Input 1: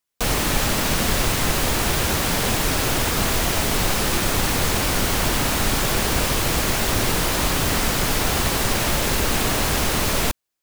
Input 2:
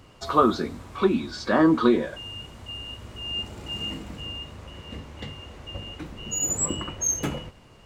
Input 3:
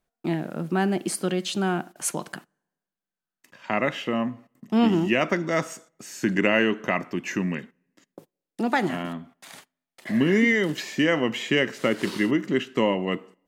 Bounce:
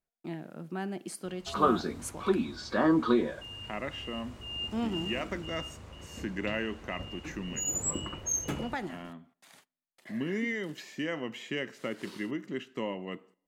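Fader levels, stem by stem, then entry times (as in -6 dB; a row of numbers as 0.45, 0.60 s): off, -6.0 dB, -12.5 dB; off, 1.25 s, 0.00 s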